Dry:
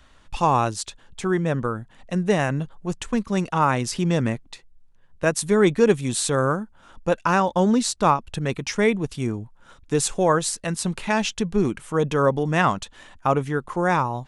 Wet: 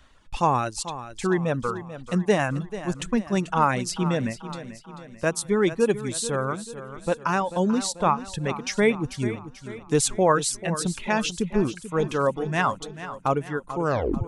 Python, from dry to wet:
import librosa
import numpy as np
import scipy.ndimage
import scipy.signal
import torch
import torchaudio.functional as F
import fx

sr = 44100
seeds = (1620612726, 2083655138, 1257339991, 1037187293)

p1 = fx.tape_stop_end(x, sr, length_s=0.47)
p2 = fx.dereverb_blind(p1, sr, rt60_s=1.7)
p3 = fx.rider(p2, sr, range_db=10, speed_s=2.0)
p4 = p3 + fx.echo_feedback(p3, sr, ms=439, feedback_pct=49, wet_db=-13, dry=0)
y = p4 * librosa.db_to_amplitude(-2.0)